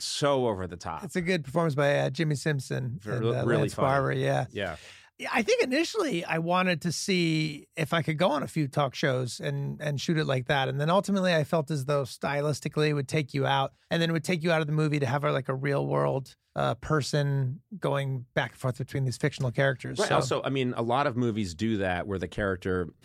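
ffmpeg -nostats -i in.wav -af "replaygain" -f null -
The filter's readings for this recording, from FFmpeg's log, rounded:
track_gain = +8.4 dB
track_peak = 0.222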